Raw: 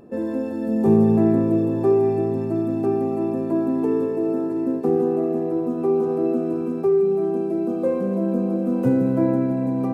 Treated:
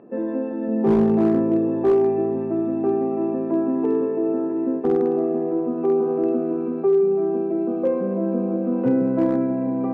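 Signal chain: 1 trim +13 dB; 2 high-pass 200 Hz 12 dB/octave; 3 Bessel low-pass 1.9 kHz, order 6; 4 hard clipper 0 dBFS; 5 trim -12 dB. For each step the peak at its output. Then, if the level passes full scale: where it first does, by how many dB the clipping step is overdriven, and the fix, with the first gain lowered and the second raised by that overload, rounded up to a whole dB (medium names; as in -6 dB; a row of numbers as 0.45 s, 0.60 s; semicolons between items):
+6.5 dBFS, +5.5 dBFS, +5.5 dBFS, 0.0 dBFS, -12.0 dBFS; step 1, 5.5 dB; step 1 +7 dB, step 5 -6 dB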